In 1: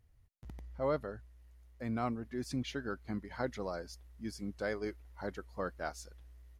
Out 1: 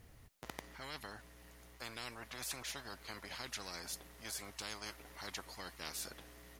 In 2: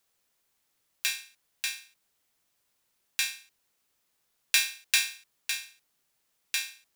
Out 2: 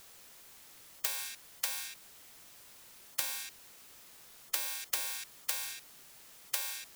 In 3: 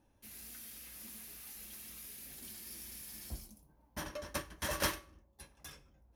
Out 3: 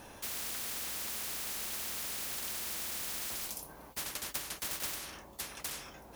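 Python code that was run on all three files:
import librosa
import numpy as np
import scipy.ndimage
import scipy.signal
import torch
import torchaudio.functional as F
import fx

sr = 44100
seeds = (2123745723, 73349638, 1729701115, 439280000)

y = fx.spectral_comp(x, sr, ratio=10.0)
y = y * 10.0 ** (-3.5 / 20.0)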